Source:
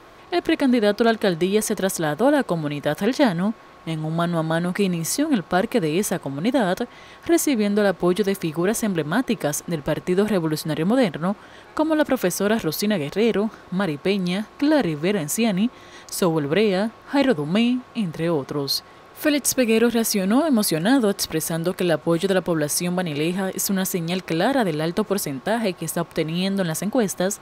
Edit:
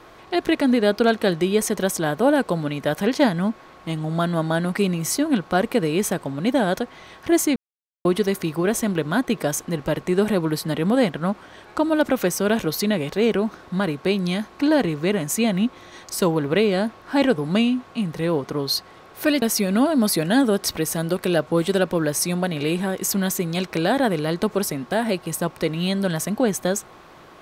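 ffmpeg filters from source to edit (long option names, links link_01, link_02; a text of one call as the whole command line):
ffmpeg -i in.wav -filter_complex "[0:a]asplit=4[link_01][link_02][link_03][link_04];[link_01]atrim=end=7.56,asetpts=PTS-STARTPTS,afade=type=out:start_time=7.556:duration=0.004:curve=hsin[link_05];[link_02]atrim=start=7.56:end=8.05,asetpts=PTS-STARTPTS,volume=0[link_06];[link_03]atrim=start=8.05:end=19.422,asetpts=PTS-STARTPTS,afade=type=in:duration=0.004:curve=hsin[link_07];[link_04]atrim=start=19.968[link_08];[link_05][link_06][link_07]concat=n=3:v=0:a=1[link_09];[link_09][link_08]acrossfade=duration=0.004:curve1=hsin:curve2=hsin" out.wav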